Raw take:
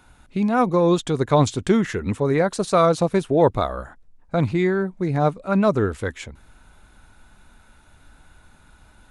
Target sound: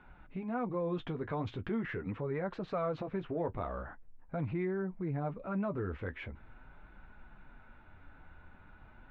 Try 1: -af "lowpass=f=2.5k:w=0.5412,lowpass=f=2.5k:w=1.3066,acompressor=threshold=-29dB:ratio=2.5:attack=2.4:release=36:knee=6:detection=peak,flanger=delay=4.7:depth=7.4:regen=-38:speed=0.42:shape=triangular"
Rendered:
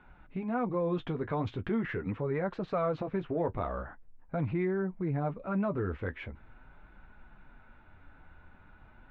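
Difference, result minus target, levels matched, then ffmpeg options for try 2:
compressor: peak gain reduction -4 dB
-af "lowpass=f=2.5k:w=0.5412,lowpass=f=2.5k:w=1.3066,acompressor=threshold=-35.5dB:ratio=2.5:attack=2.4:release=36:knee=6:detection=peak,flanger=delay=4.7:depth=7.4:regen=-38:speed=0.42:shape=triangular"

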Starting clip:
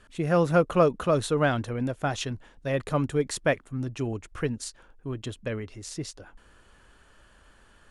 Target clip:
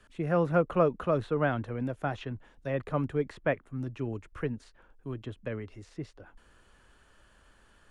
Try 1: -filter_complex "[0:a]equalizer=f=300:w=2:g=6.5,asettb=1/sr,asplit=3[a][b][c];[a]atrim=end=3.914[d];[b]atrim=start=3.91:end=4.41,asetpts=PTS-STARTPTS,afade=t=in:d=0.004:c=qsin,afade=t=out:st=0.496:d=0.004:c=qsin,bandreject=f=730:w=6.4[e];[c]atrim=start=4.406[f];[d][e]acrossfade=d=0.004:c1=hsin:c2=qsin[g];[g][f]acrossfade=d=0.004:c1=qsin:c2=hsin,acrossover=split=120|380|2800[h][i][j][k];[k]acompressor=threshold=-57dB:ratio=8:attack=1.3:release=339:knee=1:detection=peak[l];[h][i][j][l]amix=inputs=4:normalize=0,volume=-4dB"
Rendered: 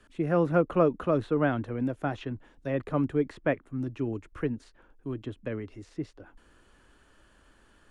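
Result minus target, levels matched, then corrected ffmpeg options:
250 Hz band +3.0 dB
-filter_complex "[0:a]asettb=1/sr,asplit=3[a][b][c];[a]atrim=end=3.914[d];[b]atrim=start=3.91:end=4.41,asetpts=PTS-STARTPTS,afade=t=in:d=0.004:c=qsin,afade=t=out:st=0.496:d=0.004:c=qsin,bandreject=f=730:w=6.4[e];[c]atrim=start=4.406[f];[d][e]acrossfade=d=0.004:c1=hsin:c2=qsin[g];[g][f]acrossfade=d=0.004:c1=qsin:c2=hsin,acrossover=split=120|380|2800[h][i][j][k];[k]acompressor=threshold=-57dB:ratio=8:attack=1.3:release=339:knee=1:detection=peak[l];[h][i][j][l]amix=inputs=4:normalize=0,volume=-4dB"

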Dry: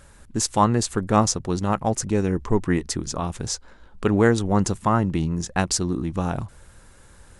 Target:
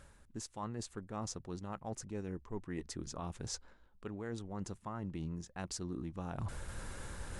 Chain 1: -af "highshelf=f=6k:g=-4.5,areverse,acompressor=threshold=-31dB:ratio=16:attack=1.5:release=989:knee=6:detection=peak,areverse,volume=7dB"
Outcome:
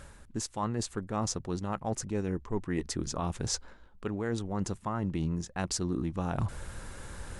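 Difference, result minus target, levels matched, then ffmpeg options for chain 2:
compressor: peak gain reduction -9.5 dB
-af "highshelf=f=6k:g=-4.5,areverse,acompressor=threshold=-41dB:ratio=16:attack=1.5:release=989:knee=6:detection=peak,areverse,volume=7dB"

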